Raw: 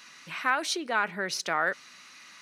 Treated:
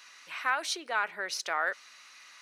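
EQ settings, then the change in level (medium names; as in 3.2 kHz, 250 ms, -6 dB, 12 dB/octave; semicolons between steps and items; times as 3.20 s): high-pass 510 Hz 12 dB/octave; -2.5 dB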